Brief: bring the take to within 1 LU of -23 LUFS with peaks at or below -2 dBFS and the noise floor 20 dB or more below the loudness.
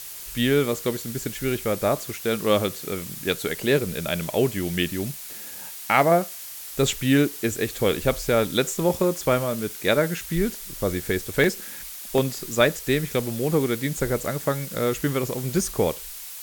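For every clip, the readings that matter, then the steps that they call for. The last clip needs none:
dropouts 2; longest dropout 1.6 ms; noise floor -38 dBFS; noise floor target -45 dBFS; loudness -24.5 LUFS; peak level -4.5 dBFS; loudness target -23.0 LUFS
-> interpolate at 11.44/12.18 s, 1.6 ms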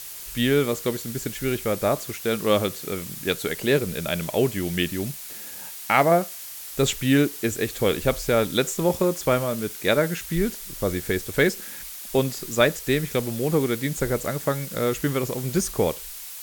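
dropouts 0; noise floor -38 dBFS; noise floor target -45 dBFS
-> noise reduction 7 dB, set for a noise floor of -38 dBFS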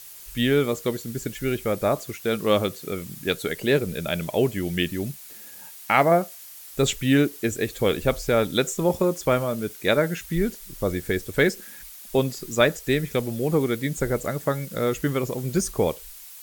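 noise floor -43 dBFS; noise floor target -45 dBFS
-> noise reduction 6 dB, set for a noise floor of -43 dBFS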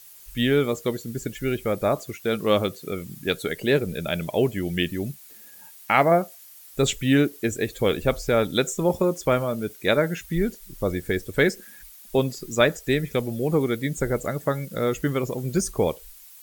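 noise floor -47 dBFS; loudness -24.5 LUFS; peak level -4.5 dBFS; loudness target -23.0 LUFS
-> trim +1.5 dB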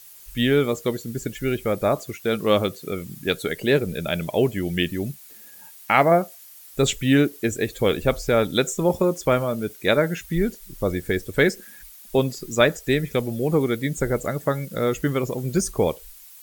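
loudness -23.0 LUFS; peak level -3.0 dBFS; noise floor -46 dBFS

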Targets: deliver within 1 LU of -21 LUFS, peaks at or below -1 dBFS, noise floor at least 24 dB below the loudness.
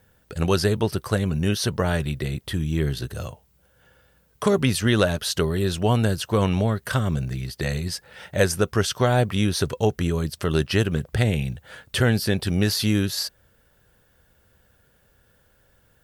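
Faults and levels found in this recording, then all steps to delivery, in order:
loudness -23.5 LUFS; peak level -4.5 dBFS; loudness target -21.0 LUFS
-> trim +2.5 dB

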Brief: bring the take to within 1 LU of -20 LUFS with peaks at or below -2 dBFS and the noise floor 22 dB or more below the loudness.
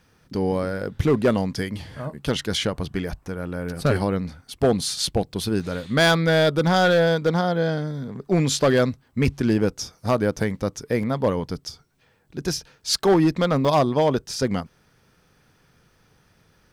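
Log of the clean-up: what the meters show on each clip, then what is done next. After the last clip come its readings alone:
clipped samples 1.2%; clipping level -12.0 dBFS; dropouts 4; longest dropout 3.2 ms; loudness -22.5 LUFS; peak level -12.0 dBFS; loudness target -20.0 LUFS
-> clip repair -12 dBFS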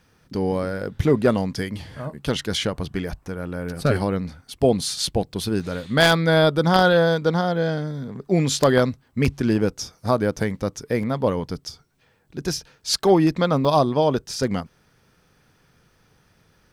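clipped samples 0.0%; dropouts 4; longest dropout 3.2 ms
-> interpolate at 3.08/5.60/11.03/13.65 s, 3.2 ms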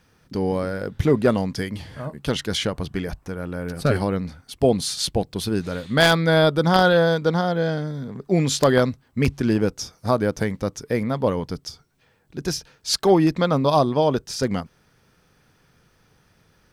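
dropouts 0; loudness -22.0 LUFS; peak level -3.0 dBFS; loudness target -20.0 LUFS
-> trim +2 dB; peak limiter -2 dBFS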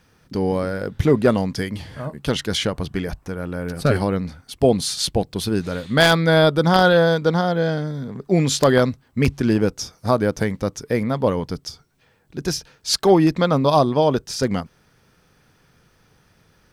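loudness -20.0 LUFS; peak level -2.0 dBFS; noise floor -59 dBFS

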